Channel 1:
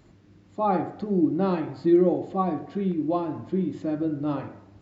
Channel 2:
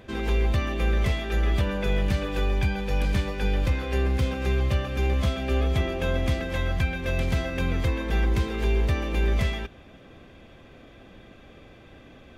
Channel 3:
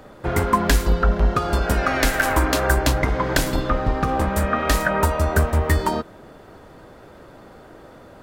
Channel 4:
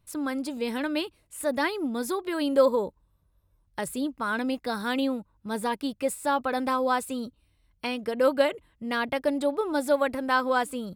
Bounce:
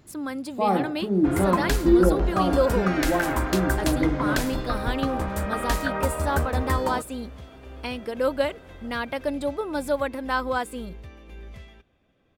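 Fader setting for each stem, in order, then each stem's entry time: +1.0, -18.5, -7.0, -1.5 dB; 0.00, 2.15, 1.00, 0.00 s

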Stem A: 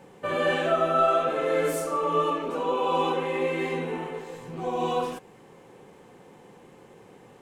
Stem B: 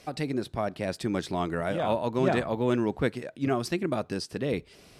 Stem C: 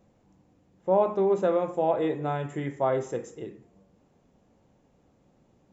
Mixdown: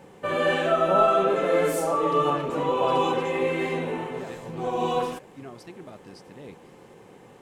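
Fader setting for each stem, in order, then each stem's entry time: +1.5, -15.0, -3.5 dB; 0.00, 1.95, 0.00 s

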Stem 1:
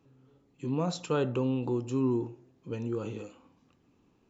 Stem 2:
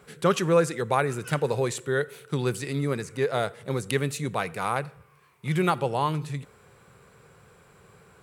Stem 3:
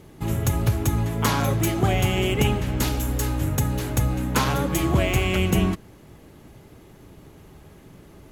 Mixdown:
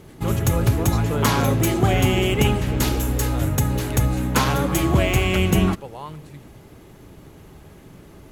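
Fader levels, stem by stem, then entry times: +0.5, -10.0, +2.5 dB; 0.00, 0.00, 0.00 s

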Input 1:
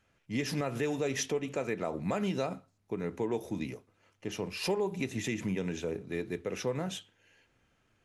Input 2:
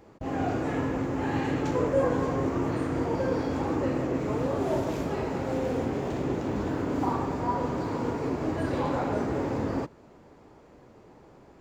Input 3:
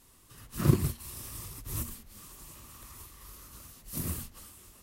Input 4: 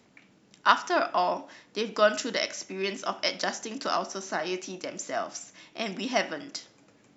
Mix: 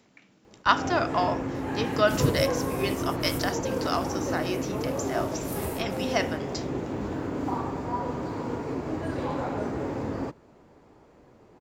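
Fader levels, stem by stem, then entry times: off, -2.0 dB, -2.0 dB, -0.5 dB; off, 0.45 s, 1.55 s, 0.00 s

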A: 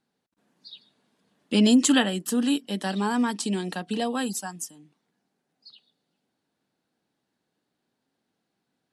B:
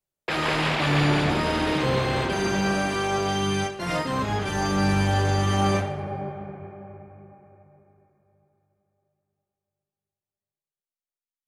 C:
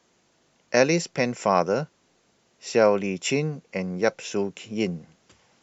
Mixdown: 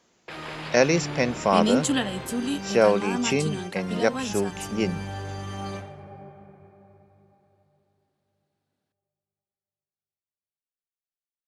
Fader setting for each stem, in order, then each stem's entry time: -4.5, -12.0, 0.0 dB; 0.00, 0.00, 0.00 s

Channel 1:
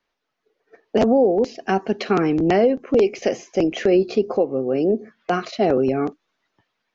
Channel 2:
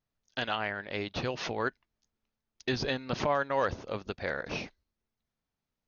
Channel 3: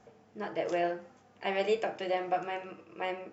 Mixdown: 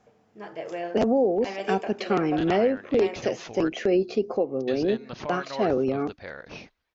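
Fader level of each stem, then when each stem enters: -5.5, -5.5, -2.5 dB; 0.00, 2.00, 0.00 s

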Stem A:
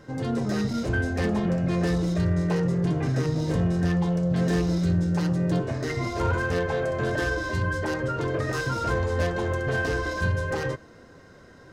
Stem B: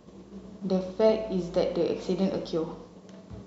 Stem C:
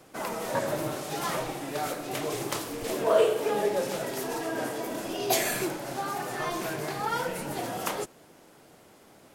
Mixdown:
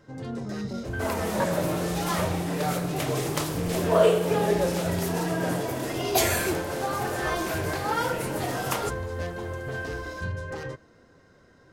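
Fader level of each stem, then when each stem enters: -7.0, -12.5, +2.5 dB; 0.00, 0.00, 0.85 s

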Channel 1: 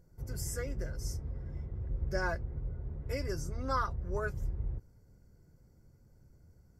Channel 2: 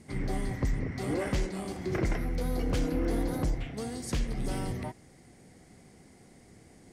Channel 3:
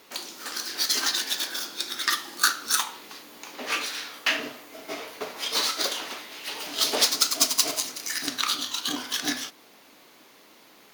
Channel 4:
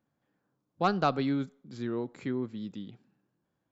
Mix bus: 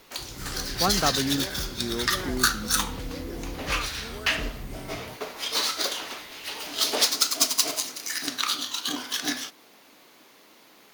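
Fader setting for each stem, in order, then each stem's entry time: -6.0, -7.0, -0.5, +1.0 dB; 0.00, 0.25, 0.00, 0.00 s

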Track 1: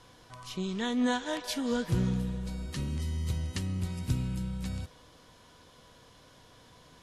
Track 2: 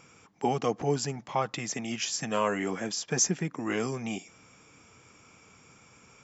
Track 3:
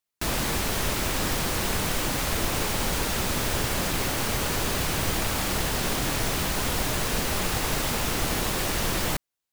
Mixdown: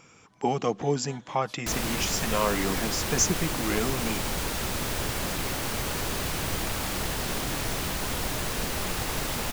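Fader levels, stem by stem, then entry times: -17.5, +1.5, -3.5 dB; 0.00, 0.00, 1.45 s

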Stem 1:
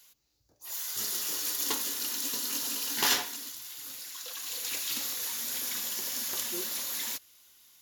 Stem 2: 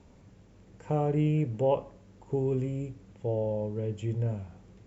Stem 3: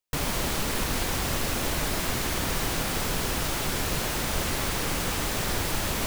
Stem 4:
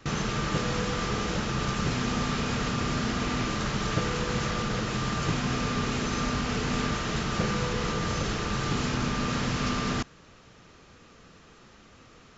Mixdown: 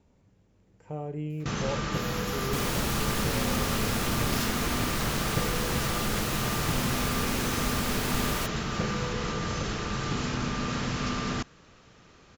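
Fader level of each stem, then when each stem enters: -11.0, -8.0, -4.0, -2.0 dB; 1.30, 0.00, 2.40, 1.40 s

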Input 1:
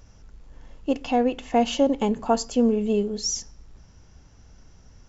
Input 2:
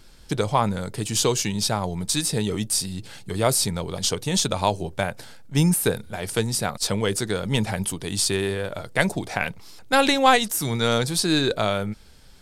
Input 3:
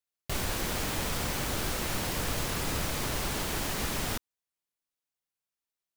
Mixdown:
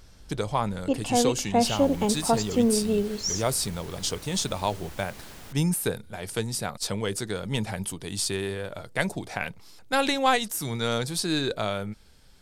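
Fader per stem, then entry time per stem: -2.0, -5.5, -13.5 dB; 0.00, 0.00, 1.35 s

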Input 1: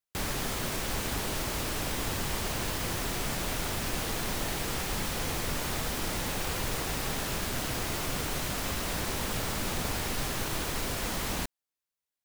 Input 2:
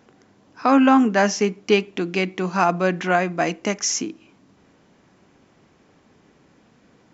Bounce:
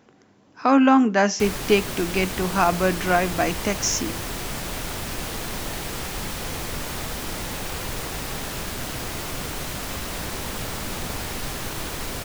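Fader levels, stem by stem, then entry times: +2.0, -1.0 dB; 1.25, 0.00 s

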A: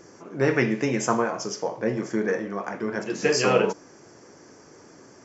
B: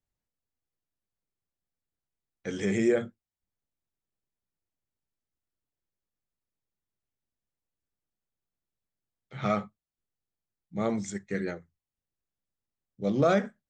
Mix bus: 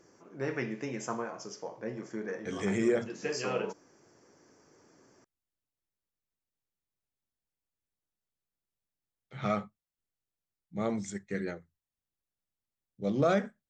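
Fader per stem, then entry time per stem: -12.5, -3.0 dB; 0.00, 0.00 s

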